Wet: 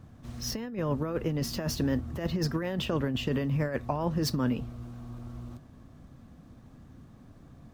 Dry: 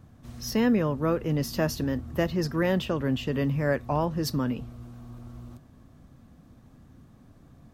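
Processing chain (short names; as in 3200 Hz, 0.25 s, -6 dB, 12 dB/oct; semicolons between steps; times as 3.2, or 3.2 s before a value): median filter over 3 samples; negative-ratio compressor -27 dBFS, ratio -0.5; gain -1 dB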